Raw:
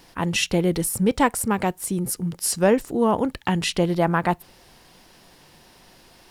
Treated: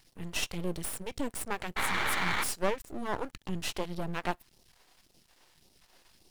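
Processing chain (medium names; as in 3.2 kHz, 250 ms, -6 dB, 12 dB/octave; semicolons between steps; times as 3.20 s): phase shifter stages 2, 1.8 Hz, lowest notch 100–1500 Hz; painted sound noise, 1.76–2.44 s, 760–2400 Hz -20 dBFS; half-wave rectifier; trim -6.5 dB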